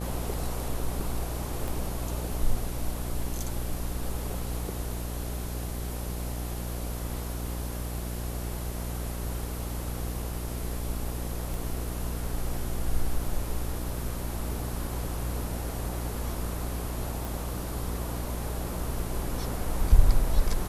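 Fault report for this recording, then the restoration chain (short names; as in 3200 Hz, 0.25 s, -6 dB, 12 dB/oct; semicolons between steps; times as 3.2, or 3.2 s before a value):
buzz 60 Hz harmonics 14 -34 dBFS
1.68 pop
11.54 pop
17.25 pop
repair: de-click; de-hum 60 Hz, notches 14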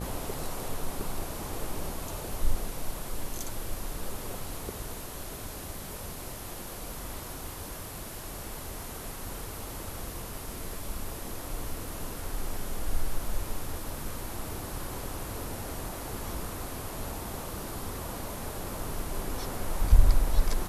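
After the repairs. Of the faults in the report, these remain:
1.68 pop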